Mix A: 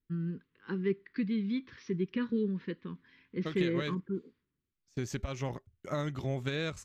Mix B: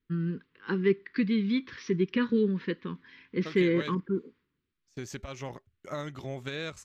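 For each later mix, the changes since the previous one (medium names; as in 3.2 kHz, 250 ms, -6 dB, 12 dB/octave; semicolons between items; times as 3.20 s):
first voice +9.0 dB; master: add bass shelf 260 Hz -7 dB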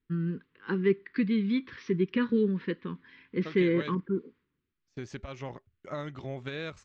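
master: add distance through air 140 m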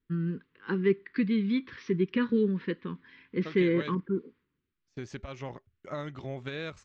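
no change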